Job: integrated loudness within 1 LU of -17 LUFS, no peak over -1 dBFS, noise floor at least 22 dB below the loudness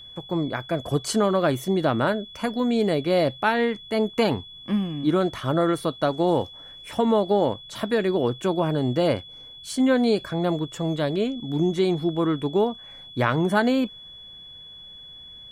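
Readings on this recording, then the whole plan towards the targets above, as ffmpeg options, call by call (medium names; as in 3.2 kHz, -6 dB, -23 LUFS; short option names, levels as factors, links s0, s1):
steady tone 3.4 kHz; tone level -41 dBFS; loudness -24.0 LUFS; peak level -6.5 dBFS; loudness target -17.0 LUFS
-> -af "bandreject=f=3400:w=30"
-af "volume=2.24,alimiter=limit=0.891:level=0:latency=1"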